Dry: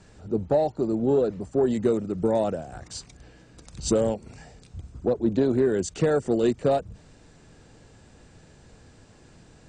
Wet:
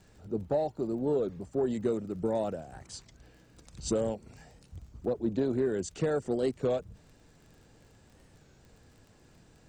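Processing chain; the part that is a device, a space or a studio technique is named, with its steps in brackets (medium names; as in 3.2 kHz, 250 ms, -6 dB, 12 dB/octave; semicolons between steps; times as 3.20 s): warped LP (warped record 33 1/3 rpm, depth 160 cents; crackle 24 per s -41 dBFS; pink noise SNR 45 dB); trim -7 dB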